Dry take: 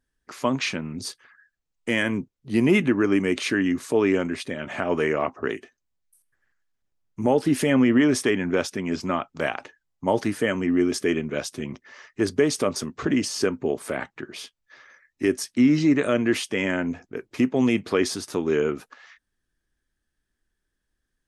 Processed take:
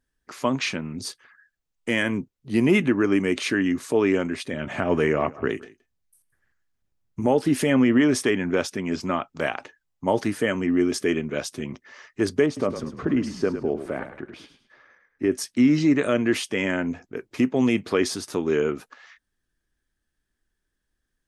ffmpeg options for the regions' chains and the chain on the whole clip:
-filter_complex "[0:a]asettb=1/sr,asplit=3[s0][s1][s2];[s0]atrim=end=4.534[s3];[s1]atrim=start=4.53:end=7.2,asetpts=PTS-STARTPTS,afade=t=in:d=0.004:c=qsin,afade=t=out:st=2.666:d=0.004:c=qsin,equalizer=f=69:w=0.33:g=7.5,aecho=1:1:170:0.0841,atrim=end_sample=117747[s4];[s2]atrim=start=7.196[s5];[s3][s4]acrossfade=d=0.004:c1=hsin:c2=qsin[s6];[s6][s5]acrossfade=d=0.004:c1=qsin:c2=hsin,asettb=1/sr,asplit=3[s7][s8][s9];[s7]atrim=end=12.464[s10];[s8]atrim=start=12.46:end=15.32,asetpts=PTS-STARTPTS,afade=t=in:d=0.004:c=qsin,afade=t=out:st=2.856:d=0.004:c=qsin,lowpass=f=1200:p=1,asplit=5[s11][s12][s13][s14][s15];[s12]adelay=104,afreqshift=-33,volume=0.316[s16];[s13]adelay=208,afreqshift=-66,volume=0.105[s17];[s14]adelay=312,afreqshift=-99,volume=0.0343[s18];[s15]adelay=416,afreqshift=-132,volume=0.0114[s19];[s11][s16][s17][s18][s19]amix=inputs=5:normalize=0,atrim=end_sample=126126[s20];[s9]atrim=start=15.316[s21];[s10][s20]acrossfade=d=0.004:c1=hsin:c2=qsin[s22];[s22][s21]acrossfade=d=0.004:c1=qsin:c2=hsin"

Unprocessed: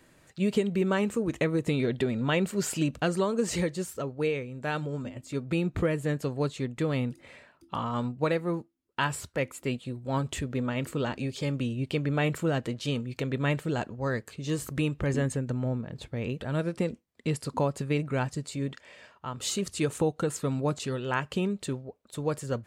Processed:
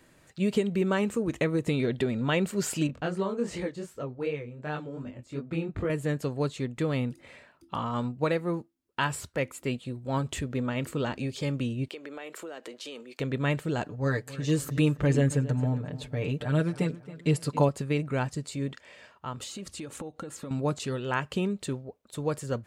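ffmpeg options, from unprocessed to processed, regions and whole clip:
-filter_complex "[0:a]asettb=1/sr,asplit=3[s0][s1][s2];[s0]atrim=end=2.874[s3];[s1]atrim=start=2.87:end=5.9,asetpts=PTS-STARTPTS,afade=t=in:d=0.004:c=qsin,afade=t=out:st=3.026:d=0.004:c=qsin,lowpass=f=2900:p=1,flanger=delay=20:depth=5.2:speed=2.7[s4];[s2]atrim=start=5.896[s5];[s3][s4]acrossfade=d=0.004:c1=hsin:c2=qsin[s6];[s6][s5]acrossfade=d=0.004:c1=qsin:c2=hsin,asettb=1/sr,asplit=3[s7][s8][s9];[s7]atrim=end=11.884[s10];[s8]atrim=start=11.88:end=13.2,asetpts=PTS-STARTPTS,afade=t=in:d=0.004:c=qsin,afade=t=out:st=1.316:d=0.004:c=qsin,highpass=f=330:w=0.5412,highpass=f=330:w=1.3066,acompressor=threshold=0.0141:ratio=6:attack=3.2:release=140:knee=1:detection=peak[s11];[s9]atrim=start=13.196[s12];[s10][s11]acrossfade=d=0.004:c1=hsin:c2=qsin[s13];[s13][s12]acrossfade=d=0.004:c1=qsin:c2=hsin,asettb=1/sr,asplit=3[s14][s15][s16];[s14]atrim=end=13.854[s17];[s15]atrim=start=13.85:end=17.69,asetpts=PTS-STARTPTS,afade=t=in:d=0.004:c=qsin,afade=t=out:st=3.836:d=0.004:c=qsin,aecho=1:1:6.8:0.78,atrim=end_sample=169344,asplit=2[s18][s19];[s19]adelay=273,lowpass=f=4000:p=1,volume=0.158,asplit=2[s20][s21];[s21]adelay=273,lowpass=f=4000:p=1,volume=0.4,asplit=2[s22][s23];[s23]adelay=273,lowpass=f=4000:p=1,volume=0.4,asplit=2[s24][s25];[s25]adelay=273,lowpass=f=4000:p=1,volume=0.4[s26];[s18][s20][s22][s24][s26]amix=inputs=5:normalize=0,atrim=end_sample=169344[s27];[s16]atrim=start=17.686[s28];[s17][s27]acrossfade=d=0.004:c1=hsin:c2=qsin[s29];[s29][s28]acrossfade=d=0.004:c1=qsin:c2=hsin,asettb=1/sr,asplit=3[s30][s31][s32];[s30]atrim=end=19.434[s33];[s31]atrim=start=19.43:end=20.51,asetpts=PTS-STARTPTS,afade=t=in:d=0.004:c=qsin,afade=t=out:st=1.076:d=0.004:c=qsin,aecho=1:1:3.6:0.36,atrim=end_sample=47628,acompressor=threshold=0.02:ratio=16:attack=3.2:release=140:knee=1:detection=peak,highshelf=f=6000:g=-5[s34];[s32]atrim=start=20.506[s35];[s33][s34]acrossfade=d=0.004:c1=hsin:c2=qsin[s36];[s36][s35]acrossfade=d=0.004:c1=qsin:c2=hsin"

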